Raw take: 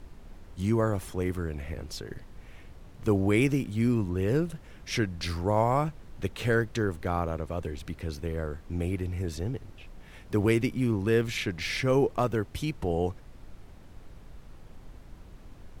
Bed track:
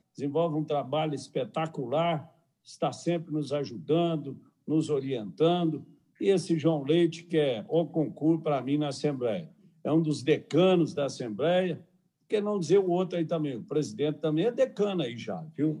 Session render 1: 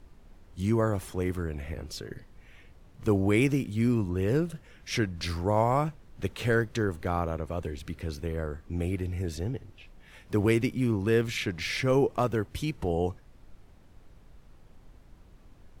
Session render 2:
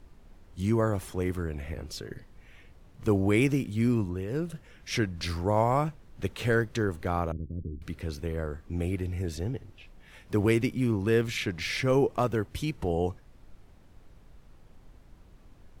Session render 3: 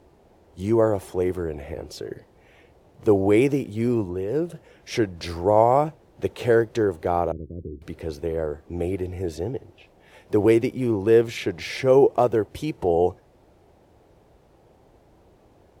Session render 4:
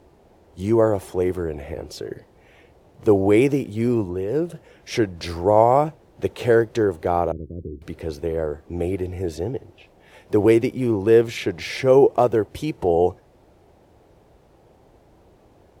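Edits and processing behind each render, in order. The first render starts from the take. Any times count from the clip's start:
noise print and reduce 6 dB
4.02–4.54 dip -8.5 dB, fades 0.25 s; 7.32–7.82 inverse Chebyshev low-pass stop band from 830 Hz, stop band 50 dB
HPF 64 Hz; band shelf 540 Hz +9.5 dB
gain +2 dB

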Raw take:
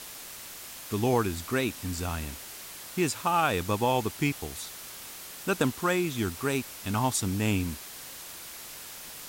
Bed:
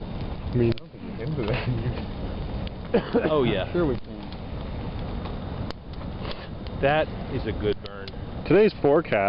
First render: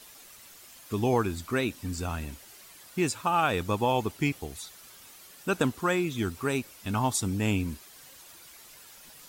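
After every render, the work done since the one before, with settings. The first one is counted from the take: denoiser 10 dB, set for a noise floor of -43 dBFS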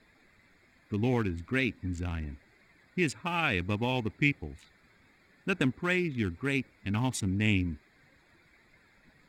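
Wiener smoothing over 15 samples; EQ curve 270 Hz 0 dB, 500 Hz -7 dB, 1200 Hz -9 dB, 2100 Hz +8 dB, 4400 Hz -3 dB, 12000 Hz -10 dB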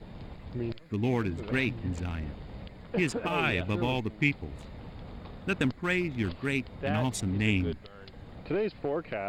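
add bed -12 dB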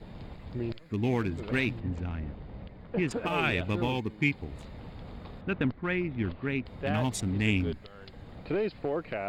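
1.8–3.11 tape spacing loss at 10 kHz 21 dB; 3.88–4.38 notch comb 660 Hz; 5.41–6.66 air absorption 320 m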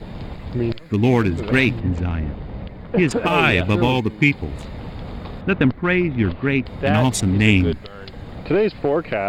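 gain +12 dB; limiter -3 dBFS, peak gain reduction 1.5 dB

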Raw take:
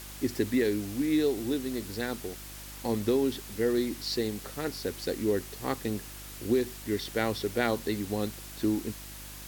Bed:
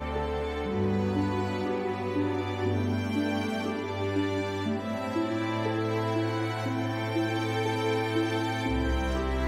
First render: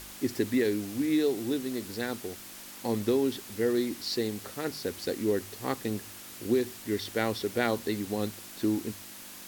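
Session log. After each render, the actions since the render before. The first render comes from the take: de-hum 50 Hz, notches 3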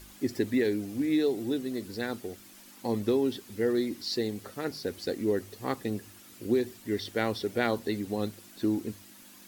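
denoiser 9 dB, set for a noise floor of -46 dBFS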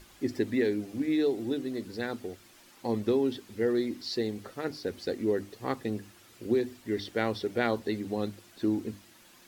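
high shelf 7200 Hz -10 dB; notches 50/100/150/200/250/300 Hz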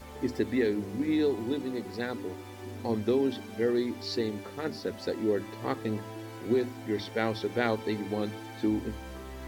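add bed -13.5 dB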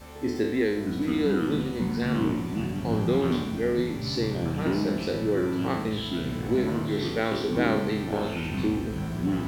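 spectral trails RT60 0.76 s; echoes that change speed 0.545 s, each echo -5 st, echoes 3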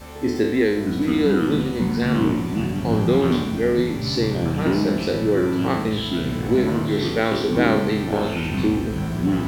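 gain +6 dB

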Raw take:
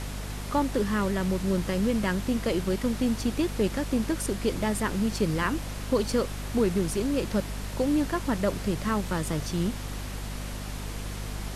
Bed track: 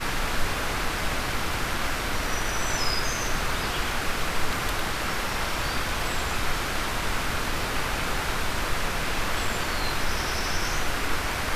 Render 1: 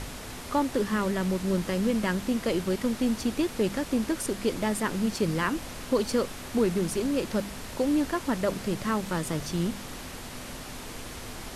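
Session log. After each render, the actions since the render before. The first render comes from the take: de-hum 50 Hz, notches 4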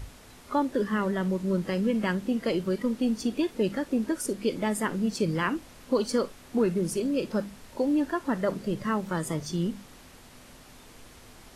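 noise print and reduce 11 dB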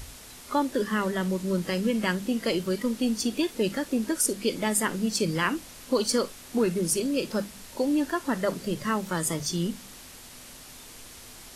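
high shelf 2900 Hz +11 dB; notches 50/100/150/200 Hz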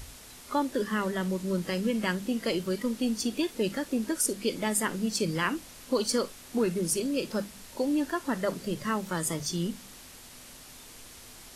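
gain -2.5 dB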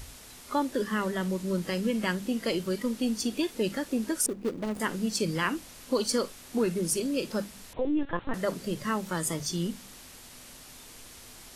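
4.26–4.8 median filter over 41 samples; 7.73–8.34 LPC vocoder at 8 kHz pitch kept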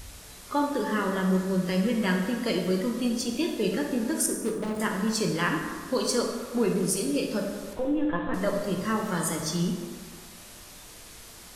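plate-style reverb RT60 1.7 s, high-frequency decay 0.5×, DRR 1 dB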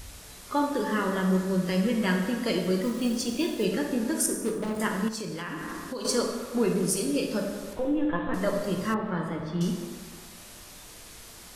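2.83–3.65 companded quantiser 6-bit; 5.08–6.05 compressor, threshold -31 dBFS; 8.94–9.61 air absorption 450 m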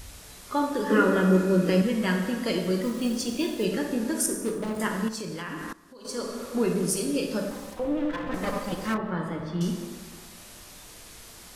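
0.9–1.82 small resonant body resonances 310/450/1400/2500 Hz, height 15 dB; 5.73–6.45 fade in quadratic, from -18 dB; 7.5–8.98 minimum comb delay 3.9 ms

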